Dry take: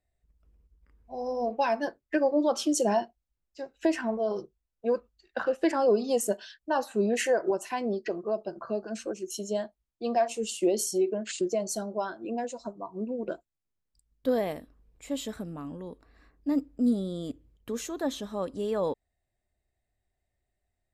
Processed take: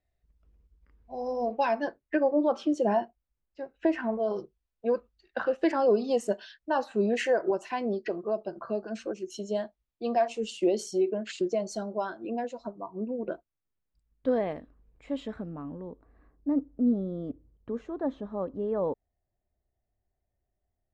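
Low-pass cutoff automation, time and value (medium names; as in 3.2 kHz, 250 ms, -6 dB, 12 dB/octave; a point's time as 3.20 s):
1.57 s 5 kHz
2.35 s 2.2 kHz
3.89 s 2.2 kHz
4.37 s 4.3 kHz
12.29 s 4.3 kHz
12.88 s 2.3 kHz
15.22 s 2.3 kHz
15.89 s 1.1 kHz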